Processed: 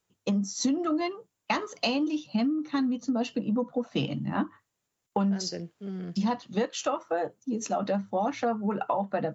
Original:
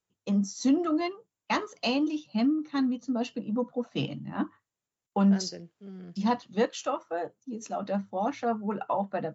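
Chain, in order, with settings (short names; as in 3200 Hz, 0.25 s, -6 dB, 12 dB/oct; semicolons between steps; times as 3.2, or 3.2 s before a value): compressor 6:1, threshold -32 dBFS, peak gain reduction 13 dB; gain +7.5 dB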